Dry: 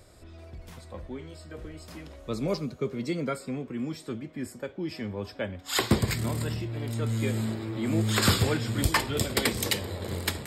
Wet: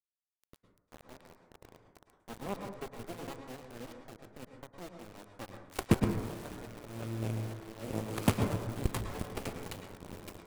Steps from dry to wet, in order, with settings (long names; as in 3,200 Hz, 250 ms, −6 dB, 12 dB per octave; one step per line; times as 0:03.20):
running median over 25 samples
parametric band 10,000 Hz +10.5 dB 1 octave
in parallel at −2 dB: downward compressor 20 to 1, threshold −37 dBFS, peak gain reduction 21 dB
on the sum: dynamic equaliser 2,500 Hz, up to +5 dB, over −55 dBFS, Q 2.2
harmonic generator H 2 −36 dB, 3 −8 dB, 5 −25 dB, 6 −26 dB, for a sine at −11.5 dBFS
bit reduction 8 bits
on a send at −5 dB: convolution reverb RT60 0.80 s, pre-delay 98 ms